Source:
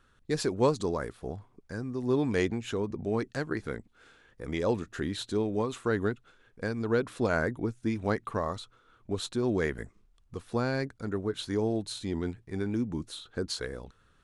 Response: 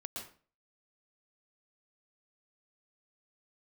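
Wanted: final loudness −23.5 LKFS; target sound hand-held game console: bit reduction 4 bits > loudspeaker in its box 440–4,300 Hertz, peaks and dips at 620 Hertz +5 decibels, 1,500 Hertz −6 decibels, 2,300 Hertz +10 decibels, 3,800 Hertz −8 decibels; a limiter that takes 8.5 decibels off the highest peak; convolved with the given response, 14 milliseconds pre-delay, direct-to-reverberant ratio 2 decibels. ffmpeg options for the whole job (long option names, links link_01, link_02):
-filter_complex "[0:a]alimiter=limit=-22dB:level=0:latency=1,asplit=2[link_01][link_02];[1:a]atrim=start_sample=2205,adelay=14[link_03];[link_02][link_03]afir=irnorm=-1:irlink=0,volume=-1dB[link_04];[link_01][link_04]amix=inputs=2:normalize=0,acrusher=bits=3:mix=0:aa=0.000001,highpass=440,equalizer=frequency=620:width_type=q:width=4:gain=5,equalizer=frequency=1500:width_type=q:width=4:gain=-6,equalizer=frequency=2300:width_type=q:width=4:gain=10,equalizer=frequency=3800:width_type=q:width=4:gain=-8,lowpass=frequency=4300:width=0.5412,lowpass=frequency=4300:width=1.3066,volume=9.5dB"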